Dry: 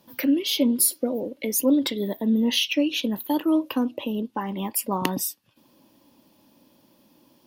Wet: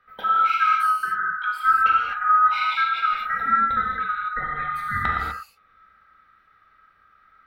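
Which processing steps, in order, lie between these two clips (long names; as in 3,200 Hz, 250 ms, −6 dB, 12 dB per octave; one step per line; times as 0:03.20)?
neighbouring bands swapped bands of 1,000 Hz
high-frequency loss of the air 470 metres
reverb whose tail is shaped and stops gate 270 ms flat, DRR −3.5 dB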